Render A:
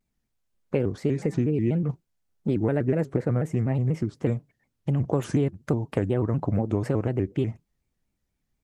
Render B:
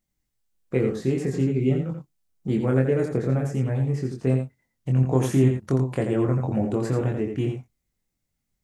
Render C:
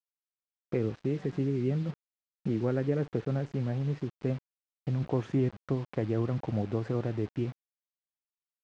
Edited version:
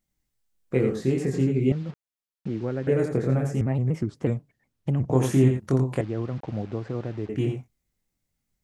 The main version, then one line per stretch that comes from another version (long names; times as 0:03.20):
B
0:01.72–0:02.87: punch in from C
0:03.61–0:05.10: punch in from A
0:06.01–0:07.29: punch in from C